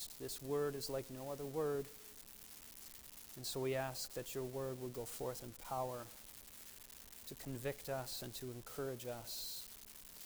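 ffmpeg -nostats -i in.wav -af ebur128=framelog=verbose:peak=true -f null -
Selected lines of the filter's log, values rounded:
Integrated loudness:
  I:         -44.7 LUFS
  Threshold: -54.7 LUFS
Loudness range:
  LRA:         3.1 LU
  Threshold: -65.0 LUFS
  LRA low:   -46.6 LUFS
  LRA high:  -43.6 LUFS
True peak:
  Peak:      -29.6 dBFS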